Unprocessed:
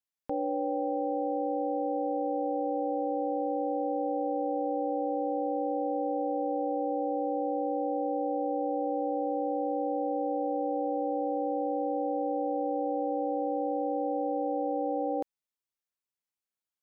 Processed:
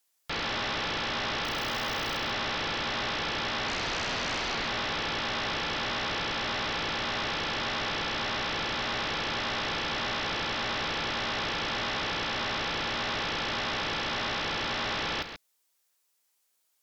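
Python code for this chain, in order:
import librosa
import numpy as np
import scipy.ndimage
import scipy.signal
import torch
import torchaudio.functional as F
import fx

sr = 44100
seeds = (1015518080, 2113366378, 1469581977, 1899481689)

y = fx.bass_treble(x, sr, bass_db=-14, treble_db=5)
y = fx.overflow_wrap(y, sr, gain_db=26.0, at=(1.44, 2.17))
y = fx.dmg_tone(y, sr, hz=430.0, level_db=-33.0, at=(3.67, 4.53), fade=0.02)
y = fx.fold_sine(y, sr, drive_db=19, ceiling_db=-20.5)
y = y + 10.0 ** (-9.5 / 20.0) * np.pad(y, (int(135 * sr / 1000.0), 0))[:len(y)]
y = F.gain(torch.from_numpy(y), -8.5).numpy()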